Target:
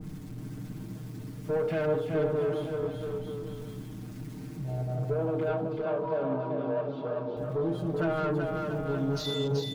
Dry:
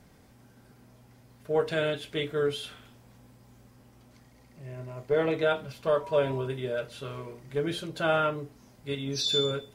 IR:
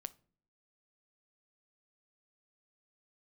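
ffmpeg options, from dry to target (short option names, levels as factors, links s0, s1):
-filter_complex "[0:a]aeval=exprs='val(0)+0.5*0.0178*sgn(val(0))':c=same,afwtdn=0.0251,aecho=1:1:6.5:0.94,alimiter=limit=0.106:level=0:latency=1:release=55,asoftclip=type=tanh:threshold=0.0596,asettb=1/sr,asplit=3[s0][s1][s2];[s0]atrim=end=5.134[s3];[s1]atrim=start=5.13:end=7.37,asetpts=PTS-STARTPTS,afade=t=in:d=0.004:c=qsin,afade=t=out:st=2.236:d=0.004:c=qsin,highpass=210,equalizer=f=230:t=q:w=4:g=5,equalizer=f=420:t=q:w=4:g=-3,equalizer=f=1900:t=q:w=4:g=-9,lowpass=f=4400:w=0.5412,lowpass=f=4400:w=1.3066[s4];[s2]atrim=start=7.366[s5];[s3][s4]acrossfade=d=0.004:c1=hsin:c2=qsin[s6];[s6][s5]acrossfade=d=0.004:c1=qsin:c2=hsin,aecho=1:1:380|684|927.2|1122|1277:0.631|0.398|0.251|0.158|0.1[s7];[1:a]atrim=start_sample=2205,asetrate=66150,aresample=44100[s8];[s7][s8]afir=irnorm=-1:irlink=0,adynamicequalizer=threshold=0.002:dfrequency=1600:dqfactor=0.7:tfrequency=1600:tqfactor=0.7:attack=5:release=100:ratio=0.375:range=3.5:mode=cutabove:tftype=highshelf,volume=2.37"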